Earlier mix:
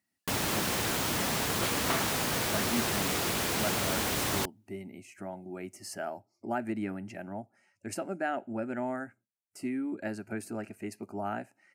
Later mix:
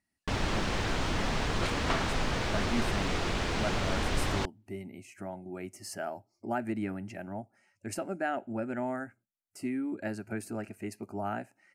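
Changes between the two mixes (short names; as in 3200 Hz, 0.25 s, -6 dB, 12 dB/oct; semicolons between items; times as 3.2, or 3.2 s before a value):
first sound: add air absorption 120 m; master: remove HPF 110 Hz 12 dB/oct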